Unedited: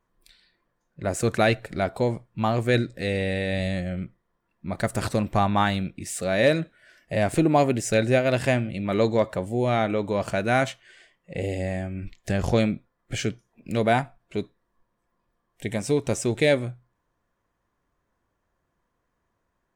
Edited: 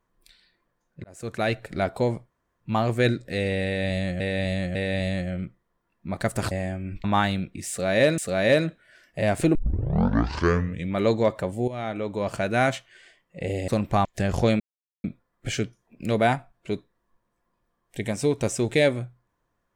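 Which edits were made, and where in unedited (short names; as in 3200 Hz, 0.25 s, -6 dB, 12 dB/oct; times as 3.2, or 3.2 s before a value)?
1.04–1.76 fade in
2.3 insert room tone 0.31 s
3.34–3.89 loop, 3 plays
5.1–5.47 swap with 11.62–12.15
6.12–6.61 loop, 2 plays
7.49 tape start 1.42 s
9.62–10.66 fade in equal-power, from -13.5 dB
12.7 insert silence 0.44 s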